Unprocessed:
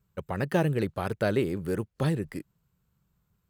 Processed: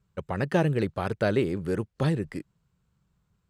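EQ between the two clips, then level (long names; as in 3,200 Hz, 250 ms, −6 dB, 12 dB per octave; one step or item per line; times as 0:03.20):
low-pass filter 8,100 Hz 12 dB per octave
+1.5 dB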